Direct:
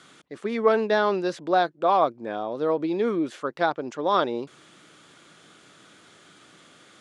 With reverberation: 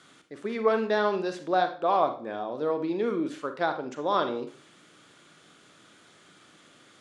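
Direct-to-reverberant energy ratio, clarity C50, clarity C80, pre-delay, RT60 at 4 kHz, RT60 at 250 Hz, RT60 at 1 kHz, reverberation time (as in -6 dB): 7.0 dB, 9.5 dB, 15.5 dB, 34 ms, 0.35 s, 0.40 s, 0.40 s, 0.40 s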